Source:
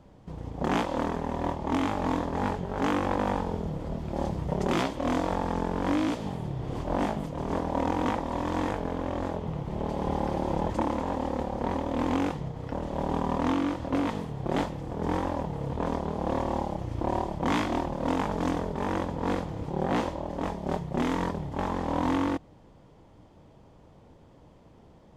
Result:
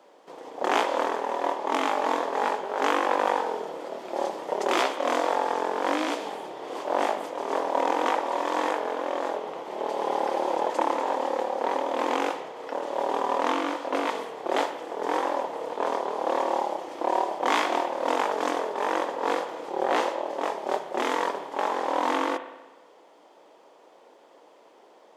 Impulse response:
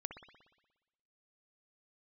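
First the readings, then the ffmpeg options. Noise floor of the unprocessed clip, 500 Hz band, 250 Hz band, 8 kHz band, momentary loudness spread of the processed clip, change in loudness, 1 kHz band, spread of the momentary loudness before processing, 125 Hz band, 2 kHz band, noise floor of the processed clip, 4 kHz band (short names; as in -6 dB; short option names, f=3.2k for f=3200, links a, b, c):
-55 dBFS, +4.5 dB, -6.0 dB, +6.0 dB, 7 LU, +2.5 dB, +6.0 dB, 6 LU, under -25 dB, +6.5 dB, -55 dBFS, +6.0 dB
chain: -filter_complex "[0:a]highpass=f=380:w=0.5412,highpass=f=380:w=1.3066,asplit=2[a][b];[1:a]atrim=start_sample=2205,lowshelf=f=410:g=-5.5[c];[b][c]afir=irnorm=-1:irlink=0,volume=4dB[d];[a][d]amix=inputs=2:normalize=0"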